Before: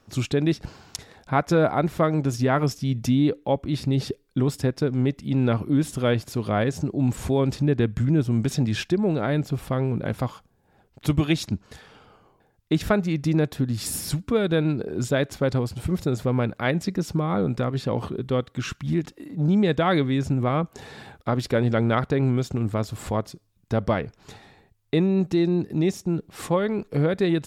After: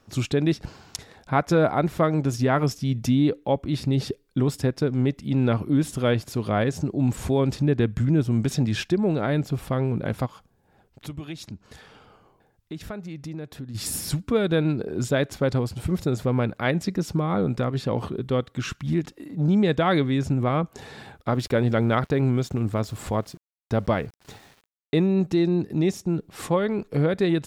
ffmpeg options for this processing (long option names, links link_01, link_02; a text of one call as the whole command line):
ffmpeg -i in.wav -filter_complex "[0:a]asplit=3[link_01][link_02][link_03];[link_01]afade=type=out:start_time=10.25:duration=0.02[link_04];[link_02]acompressor=threshold=-42dB:ratio=2:attack=3.2:release=140:knee=1:detection=peak,afade=type=in:start_time=10.25:duration=0.02,afade=type=out:start_time=13.74:duration=0.02[link_05];[link_03]afade=type=in:start_time=13.74:duration=0.02[link_06];[link_04][link_05][link_06]amix=inputs=3:normalize=0,asettb=1/sr,asplit=3[link_07][link_08][link_09];[link_07]atrim=end=21.304[link_10];[link_08]atrim=start=21.3:end=25.13,asetpts=PTS-STARTPTS,afade=type=in:duration=0.004:curve=qsin,afade=type=out:start_time=3.826:duration=0.004:curve=qsin,aeval=exprs='val(0)*gte(abs(val(0)),0.00355)':channel_layout=same[link_11];[link_09]atrim=start=25.126[link_12];[link_10][link_11]acrossfade=duration=0.004:curve1=hsin:curve2=qsin[link_13];[link_13][link_12]acrossfade=duration=0.004:curve1=qsin:curve2=hsin" out.wav